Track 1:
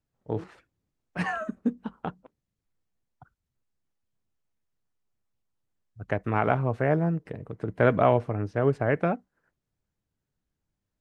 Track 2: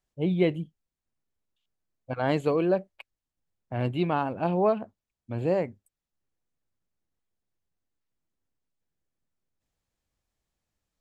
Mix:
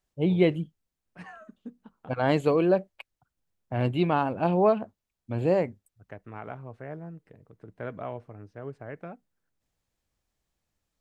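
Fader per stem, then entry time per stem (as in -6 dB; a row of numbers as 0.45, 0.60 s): -15.5, +2.0 dB; 0.00, 0.00 s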